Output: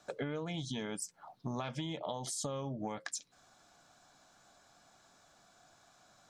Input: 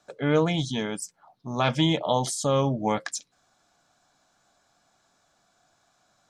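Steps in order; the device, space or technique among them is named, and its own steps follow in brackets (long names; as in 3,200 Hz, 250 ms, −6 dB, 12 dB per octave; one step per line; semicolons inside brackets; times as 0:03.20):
serial compression, leveller first (downward compressor 2.5 to 1, threshold −26 dBFS, peak gain reduction 6.5 dB; downward compressor 10 to 1, threshold −38 dBFS, peak gain reduction 15 dB)
level +2.5 dB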